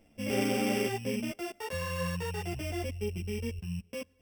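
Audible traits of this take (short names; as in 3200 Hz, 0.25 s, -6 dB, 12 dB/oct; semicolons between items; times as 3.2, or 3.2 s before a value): a buzz of ramps at a fixed pitch in blocks of 16 samples; a shimmering, thickened sound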